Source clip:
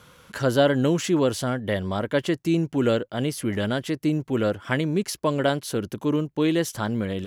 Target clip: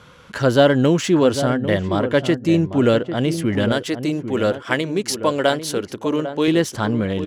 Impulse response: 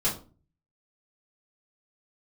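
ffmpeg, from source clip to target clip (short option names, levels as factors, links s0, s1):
-filter_complex "[0:a]asettb=1/sr,asplit=3[s0][s1][s2];[s0]atrim=end=3.724[s3];[s1]atrim=start=3.72:end=6.48,asetpts=PTS-STARTPTS,afade=t=in:d=0.004:c=qsin,afade=t=out:st=2.756:d=0.004:c=qsin,bass=f=250:g=-10,treble=f=4000:g=5[s4];[s2]atrim=start=6.476[s5];[s3][s4]acrossfade=d=0.004:c1=hsin:c2=qsin[s6];[s6][s5]acrossfade=d=0.004:c1=qsin:c2=hsin,adynamicsmooth=sensitivity=7:basefreq=6700,asplit=2[s7][s8];[s8]adelay=798,lowpass=f=840:p=1,volume=0.376,asplit=2[s9][s10];[s10]adelay=798,lowpass=f=840:p=1,volume=0.22,asplit=2[s11][s12];[s12]adelay=798,lowpass=f=840:p=1,volume=0.22[s13];[s7][s9][s11][s13]amix=inputs=4:normalize=0,volume=1.88"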